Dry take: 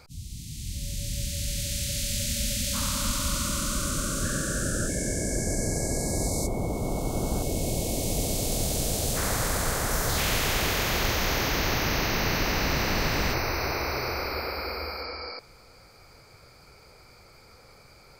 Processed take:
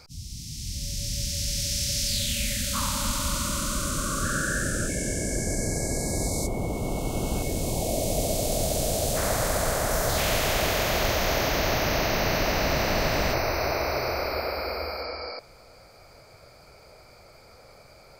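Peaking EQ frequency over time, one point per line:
peaking EQ +9.5 dB 0.47 oct
2.05 s 5.4 kHz
2.92 s 850 Hz
3.88 s 850 Hz
5.04 s 2.8 kHz
7.36 s 2.8 kHz
7.88 s 630 Hz

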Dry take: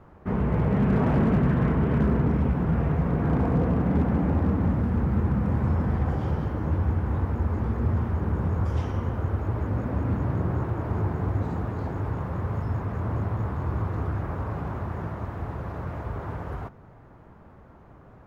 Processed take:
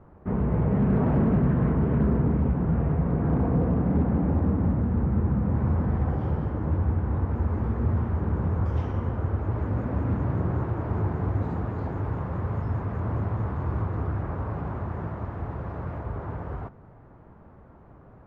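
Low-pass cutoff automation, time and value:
low-pass 6 dB/octave
1 kHz
from 5.55 s 1.4 kHz
from 7.31 s 2 kHz
from 9.51 s 2.7 kHz
from 13.85 s 2 kHz
from 15.98 s 1.5 kHz

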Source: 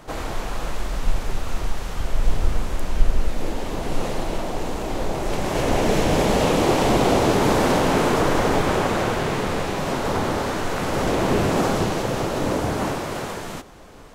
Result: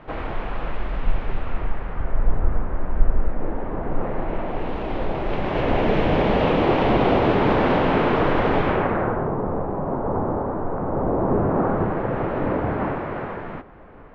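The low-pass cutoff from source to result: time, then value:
low-pass 24 dB/octave
1.33 s 2.8 kHz
2.32 s 1.7 kHz
3.98 s 1.7 kHz
4.77 s 3.1 kHz
8.64 s 3.1 kHz
9.34 s 1.1 kHz
11.18 s 1.1 kHz
12.29 s 2.1 kHz

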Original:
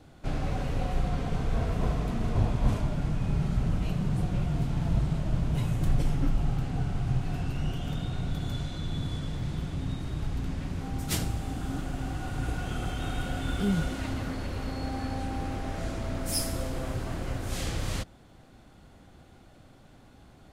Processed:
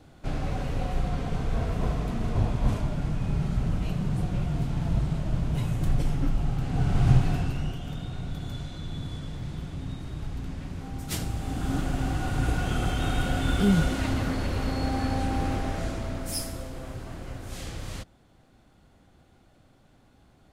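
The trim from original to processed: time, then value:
6.57 s +0.5 dB
7.10 s +9.5 dB
7.80 s -2.5 dB
11.11 s -2.5 dB
11.75 s +5.5 dB
15.53 s +5.5 dB
16.67 s -5 dB

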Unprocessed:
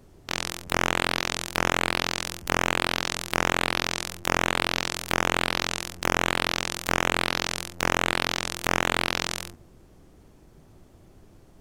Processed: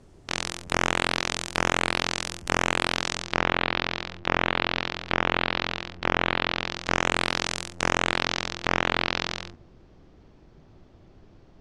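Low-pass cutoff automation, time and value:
low-pass 24 dB/octave
3.05 s 9.7 kHz
3.48 s 4.1 kHz
6.60 s 4.1 kHz
7.20 s 9.2 kHz
7.74 s 9.2 kHz
8.65 s 5.2 kHz

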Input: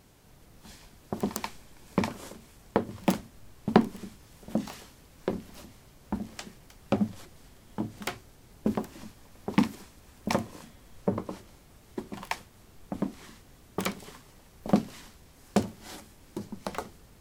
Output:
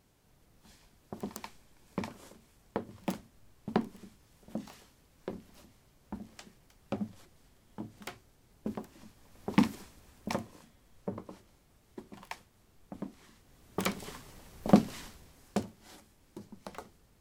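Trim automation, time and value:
8.99 s -9.5 dB
9.66 s -0.5 dB
10.67 s -10 dB
13.31 s -10 dB
14.04 s +2 dB
15.04 s +2 dB
15.73 s -10 dB

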